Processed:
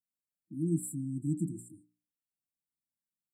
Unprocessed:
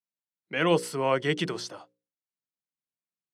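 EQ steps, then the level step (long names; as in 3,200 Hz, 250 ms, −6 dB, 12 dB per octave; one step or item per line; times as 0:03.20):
linear-phase brick-wall band-stop 340–7,200 Hz
0.0 dB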